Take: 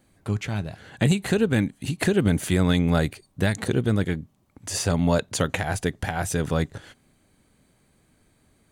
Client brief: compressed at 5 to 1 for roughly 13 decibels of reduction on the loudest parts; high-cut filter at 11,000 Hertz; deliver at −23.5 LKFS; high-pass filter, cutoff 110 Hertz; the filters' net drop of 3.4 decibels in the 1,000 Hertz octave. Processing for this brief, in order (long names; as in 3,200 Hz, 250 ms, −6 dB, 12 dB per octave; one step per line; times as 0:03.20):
high-pass filter 110 Hz
low-pass filter 11,000 Hz
parametric band 1,000 Hz −5 dB
downward compressor 5 to 1, threshold −32 dBFS
level +13 dB